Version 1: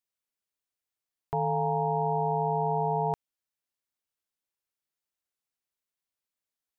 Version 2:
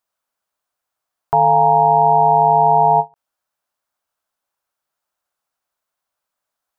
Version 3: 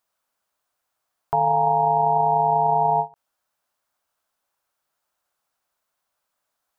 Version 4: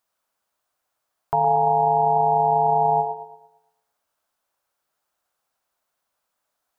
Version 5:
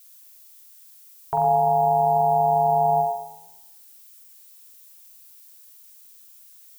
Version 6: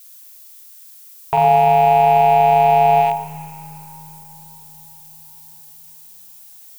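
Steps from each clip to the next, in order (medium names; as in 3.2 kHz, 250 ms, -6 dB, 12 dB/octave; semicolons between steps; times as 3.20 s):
high-order bell 930 Hz +10 dB; endings held to a fixed fall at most 420 dB/s; trim +7 dB
peak limiter -14.5 dBFS, peak gain reduction 11 dB; trim +2.5 dB
feedback echo behind a band-pass 114 ms, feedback 40%, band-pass 460 Hz, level -4 dB
added noise violet -48 dBFS; flutter echo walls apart 7.6 m, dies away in 0.48 s; trim -3 dB
rattle on loud lows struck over -44 dBFS, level -27 dBFS; reverberation RT60 4.9 s, pre-delay 90 ms, DRR 12 dB; trim +7 dB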